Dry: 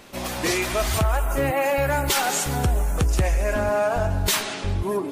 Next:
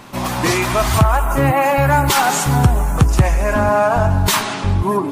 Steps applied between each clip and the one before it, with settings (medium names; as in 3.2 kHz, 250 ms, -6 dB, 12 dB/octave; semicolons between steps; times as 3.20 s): graphic EQ 125/250/500/1000 Hz +9/+4/-3/+9 dB; trim +4 dB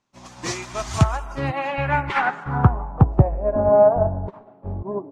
low-pass sweep 6.5 kHz -> 610 Hz, 1.08–3.29 s; upward expansion 2.5:1, over -31 dBFS; trim -1 dB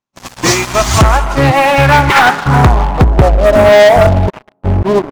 waveshaping leveller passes 5